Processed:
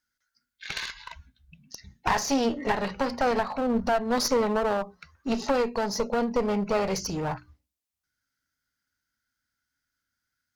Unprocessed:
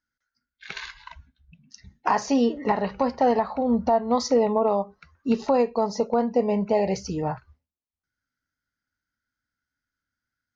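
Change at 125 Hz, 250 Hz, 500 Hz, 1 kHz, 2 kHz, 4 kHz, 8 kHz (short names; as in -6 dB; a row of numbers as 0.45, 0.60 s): -2.0 dB, -4.0 dB, -4.0 dB, -3.5 dB, +4.5 dB, +4.5 dB, n/a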